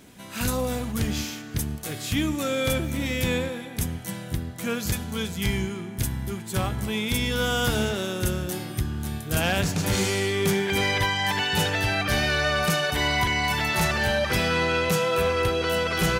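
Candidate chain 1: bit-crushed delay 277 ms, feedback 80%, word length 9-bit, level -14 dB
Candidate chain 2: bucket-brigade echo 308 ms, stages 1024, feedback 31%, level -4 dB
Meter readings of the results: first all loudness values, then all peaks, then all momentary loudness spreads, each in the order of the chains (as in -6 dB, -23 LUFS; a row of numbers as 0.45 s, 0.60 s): -25.0 LUFS, -25.0 LUFS; -13.0 dBFS, -12.0 dBFS; 8 LU, 7 LU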